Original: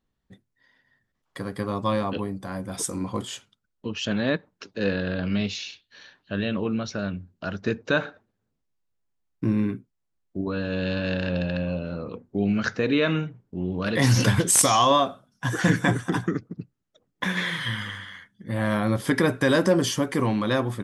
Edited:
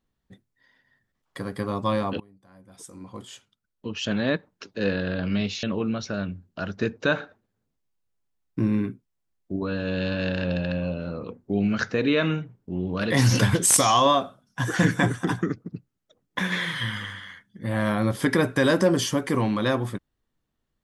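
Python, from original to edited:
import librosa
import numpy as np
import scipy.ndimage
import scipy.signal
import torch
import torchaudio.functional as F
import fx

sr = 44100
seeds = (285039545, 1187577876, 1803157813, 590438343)

y = fx.edit(x, sr, fx.fade_in_from(start_s=2.2, length_s=1.85, curve='qua', floor_db=-24.0),
    fx.cut(start_s=5.63, length_s=0.85), tone=tone)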